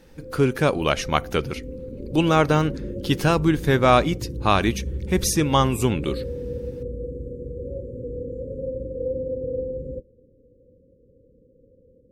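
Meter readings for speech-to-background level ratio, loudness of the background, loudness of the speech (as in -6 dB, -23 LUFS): 11.0 dB, -32.5 LUFS, -21.5 LUFS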